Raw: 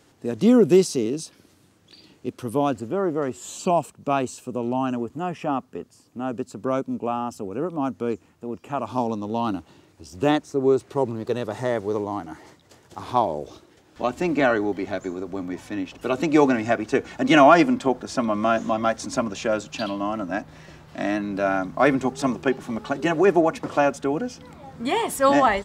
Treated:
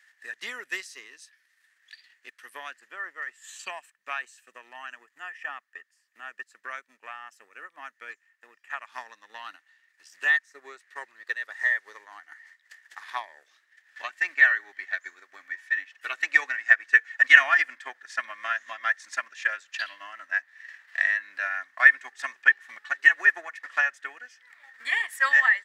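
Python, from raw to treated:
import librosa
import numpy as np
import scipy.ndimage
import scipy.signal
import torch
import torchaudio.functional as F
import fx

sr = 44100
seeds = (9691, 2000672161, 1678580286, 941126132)

y = fx.transient(x, sr, attack_db=7, sustain_db=-7)
y = fx.highpass_res(y, sr, hz=1800.0, q=15.0)
y = y * librosa.db_to_amplitude(-8.5)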